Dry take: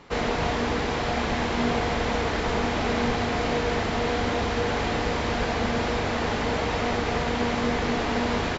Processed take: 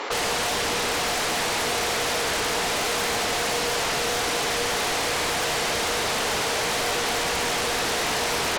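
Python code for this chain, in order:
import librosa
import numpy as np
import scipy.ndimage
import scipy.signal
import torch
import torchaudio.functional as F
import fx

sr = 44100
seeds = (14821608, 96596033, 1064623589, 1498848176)

p1 = scipy.signal.sosfilt(scipy.signal.butter(4, 370.0, 'highpass', fs=sr, output='sos'), x)
p2 = fx.fold_sine(p1, sr, drive_db=19, ceiling_db=-14.5)
p3 = p1 + (p2 * librosa.db_to_amplitude(-8.0))
p4 = fx.env_flatten(p3, sr, amount_pct=50)
y = p4 * librosa.db_to_amplitude(-2.5)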